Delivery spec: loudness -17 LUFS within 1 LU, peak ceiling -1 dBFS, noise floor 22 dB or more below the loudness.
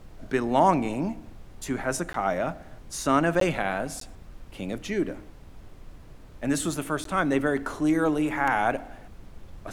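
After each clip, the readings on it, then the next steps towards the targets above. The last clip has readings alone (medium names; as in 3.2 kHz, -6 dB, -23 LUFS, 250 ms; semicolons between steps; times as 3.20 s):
dropouts 4; longest dropout 13 ms; noise floor -47 dBFS; noise floor target -49 dBFS; loudness -26.5 LUFS; peak level -7.5 dBFS; loudness target -17.0 LUFS
-> interpolate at 2.13/3.40/4.00/7.04 s, 13 ms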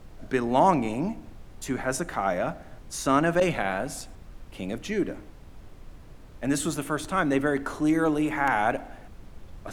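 dropouts 0; noise floor -47 dBFS; noise floor target -49 dBFS
-> noise print and reduce 6 dB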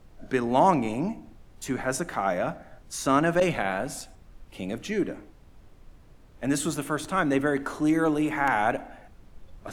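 noise floor -53 dBFS; loudness -26.5 LUFS; peak level -7.5 dBFS; loudness target -17.0 LUFS
-> trim +9.5 dB; peak limiter -1 dBFS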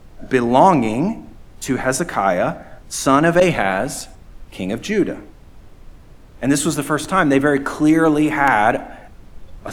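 loudness -17.5 LUFS; peak level -1.0 dBFS; noise floor -44 dBFS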